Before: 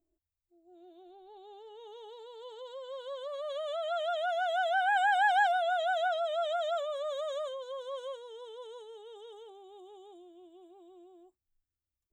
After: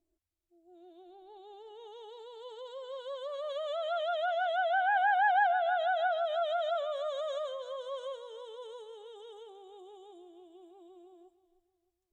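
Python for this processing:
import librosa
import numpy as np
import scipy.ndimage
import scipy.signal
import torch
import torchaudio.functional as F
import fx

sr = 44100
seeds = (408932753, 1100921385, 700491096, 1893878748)

p1 = fx.env_lowpass_down(x, sr, base_hz=2100.0, full_db=-25.0)
y = p1 + fx.echo_feedback(p1, sr, ms=309, feedback_pct=37, wet_db=-15, dry=0)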